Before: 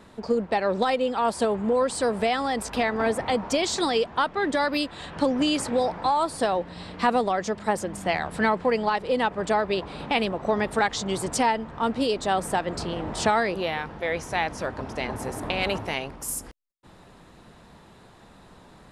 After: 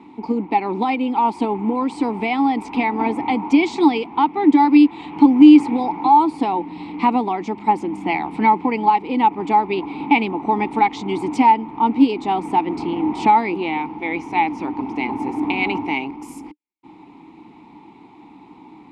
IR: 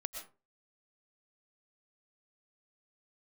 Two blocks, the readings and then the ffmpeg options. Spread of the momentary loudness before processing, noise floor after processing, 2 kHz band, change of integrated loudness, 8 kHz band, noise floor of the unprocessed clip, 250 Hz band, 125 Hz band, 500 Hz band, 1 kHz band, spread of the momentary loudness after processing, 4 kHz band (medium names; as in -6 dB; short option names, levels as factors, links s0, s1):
7 LU, -45 dBFS, +2.0 dB, +7.5 dB, under -10 dB, -51 dBFS, +13.0 dB, +1.0 dB, -1.0 dB, +9.0 dB, 10 LU, -2.5 dB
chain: -filter_complex "[0:a]asplit=3[s0][s1][s2];[s0]bandpass=f=300:t=q:w=8,volume=1[s3];[s1]bandpass=f=870:t=q:w=8,volume=0.501[s4];[s2]bandpass=f=2240:t=q:w=8,volume=0.355[s5];[s3][s4][s5]amix=inputs=3:normalize=0,apsyclip=10.6,volume=0.841"